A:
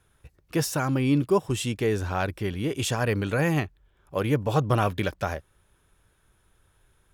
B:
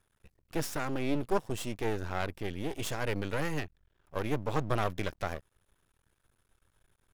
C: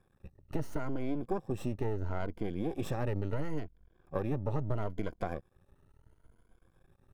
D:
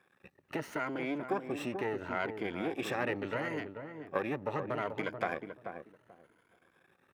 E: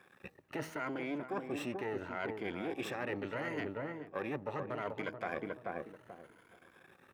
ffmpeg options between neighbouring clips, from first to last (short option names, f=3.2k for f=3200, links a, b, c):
-af "aeval=exprs='max(val(0),0)':c=same,volume=-4dB"
-af "afftfilt=real='re*pow(10,10/40*sin(2*PI*(1.8*log(max(b,1)*sr/1024/100)/log(2)-(0.74)*(pts-256)/sr)))':imag='im*pow(10,10/40*sin(2*PI*(1.8*log(max(b,1)*sr/1024/100)/log(2)-(0.74)*(pts-256)/sr)))':win_size=1024:overlap=0.75,tiltshelf=f=1.3k:g=9,acompressor=threshold=-30dB:ratio=4"
-filter_complex "[0:a]highpass=230,equalizer=f=2.1k:t=o:w=1.6:g=13,asplit=2[a][b];[b]adelay=436,lowpass=f=880:p=1,volume=-6dB,asplit=2[c][d];[d]adelay=436,lowpass=f=880:p=1,volume=0.21,asplit=2[e][f];[f]adelay=436,lowpass=f=880:p=1,volume=0.21[g];[c][e][g]amix=inputs=3:normalize=0[h];[a][h]amix=inputs=2:normalize=0"
-af "areverse,acompressor=threshold=-42dB:ratio=6,areverse,bandreject=f=158.7:t=h:w=4,bandreject=f=317.4:t=h:w=4,bandreject=f=476.1:t=h:w=4,bandreject=f=634.8:t=h:w=4,bandreject=f=793.5:t=h:w=4,bandreject=f=952.2:t=h:w=4,bandreject=f=1.1109k:t=h:w=4,volume=6.5dB"